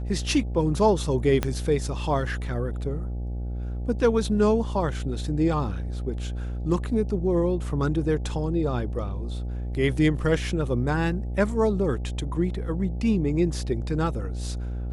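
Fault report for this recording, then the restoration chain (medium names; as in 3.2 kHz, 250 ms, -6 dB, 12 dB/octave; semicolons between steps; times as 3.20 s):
buzz 60 Hz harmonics 14 -30 dBFS
1.43 s: pop -10 dBFS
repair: de-click; de-hum 60 Hz, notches 14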